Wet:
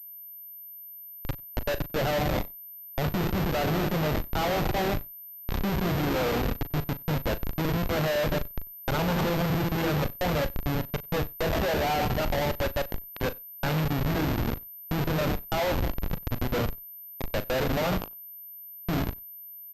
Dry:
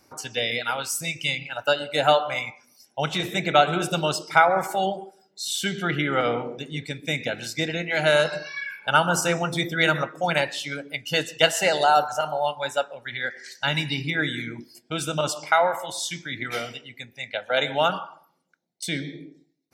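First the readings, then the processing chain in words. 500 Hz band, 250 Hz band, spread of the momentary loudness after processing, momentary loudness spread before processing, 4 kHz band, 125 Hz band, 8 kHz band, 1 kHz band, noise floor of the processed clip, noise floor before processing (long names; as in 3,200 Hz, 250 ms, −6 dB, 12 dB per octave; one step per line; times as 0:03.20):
−4.5 dB, +2.0 dB, 14 LU, 13 LU, −9.5 dB, +4.0 dB, −11.5 dB, −8.0 dB, −44 dBFS, −66 dBFS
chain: fade in at the beginning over 2.91 s
high-pass filter 100 Hz 6 dB per octave
tilt shelving filter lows +6.5 dB, about 1,300 Hz
notch filter 1,900 Hz, Q 13
brickwall limiter −12.5 dBFS, peak gain reduction 10 dB
comparator with hysteresis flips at −25 dBFS
double-tracking delay 39 ms −13 dB
slap from a distant wall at 16 metres, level −29 dB
switching amplifier with a slow clock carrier 13,000 Hz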